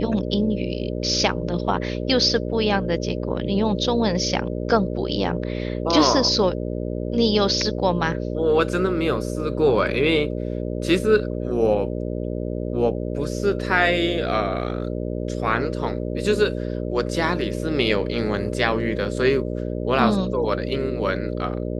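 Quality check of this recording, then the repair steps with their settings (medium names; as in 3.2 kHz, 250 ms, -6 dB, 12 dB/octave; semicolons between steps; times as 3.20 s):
buzz 60 Hz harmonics 10 -27 dBFS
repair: de-hum 60 Hz, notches 10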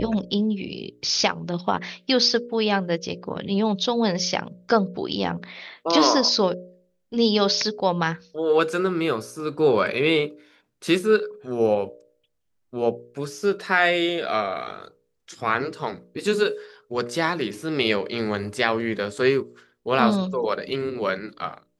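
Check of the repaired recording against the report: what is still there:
nothing left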